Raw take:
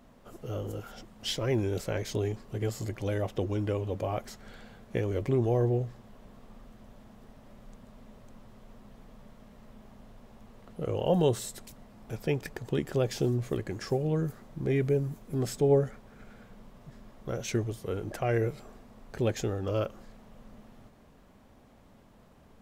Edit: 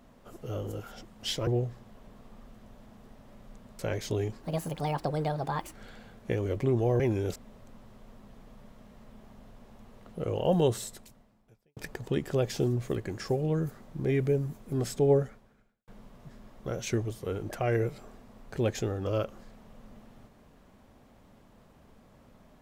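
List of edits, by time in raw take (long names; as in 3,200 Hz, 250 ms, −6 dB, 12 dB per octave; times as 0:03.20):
0:01.47–0:01.83: swap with 0:05.65–0:07.97
0:02.47–0:04.39: play speed 147%
0:11.44–0:12.38: fade out quadratic
0:15.81–0:16.49: fade out quadratic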